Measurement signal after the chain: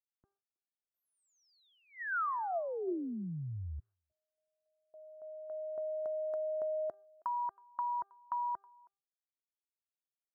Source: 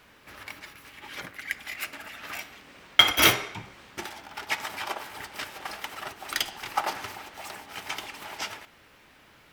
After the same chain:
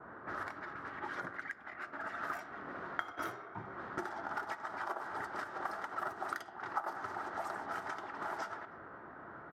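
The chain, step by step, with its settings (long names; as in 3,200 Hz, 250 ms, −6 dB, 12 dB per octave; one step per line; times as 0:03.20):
high-pass filter 96 Hz 12 dB per octave
hum removal 397.1 Hz, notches 4
downward compressor 8 to 1, threshold −44 dBFS
noise gate with hold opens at −59 dBFS
high shelf with overshoot 1,900 Hz −10 dB, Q 3
low-pass that shuts in the quiet parts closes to 730 Hz, open at −41 dBFS
hollow resonant body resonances 360/680/1,900 Hz, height 6 dB
far-end echo of a speakerphone 320 ms, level −26 dB
level +5.5 dB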